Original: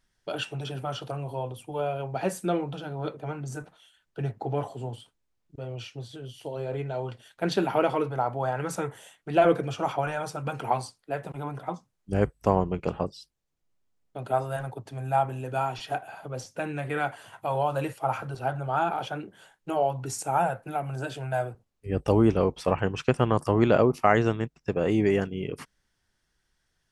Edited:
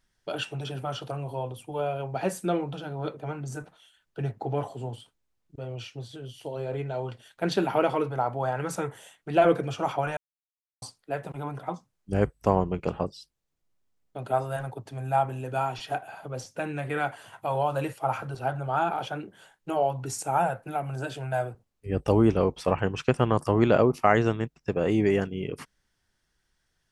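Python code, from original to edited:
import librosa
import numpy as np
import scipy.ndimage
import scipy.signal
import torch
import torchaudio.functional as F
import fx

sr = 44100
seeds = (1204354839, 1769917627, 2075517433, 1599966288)

y = fx.edit(x, sr, fx.silence(start_s=10.17, length_s=0.65), tone=tone)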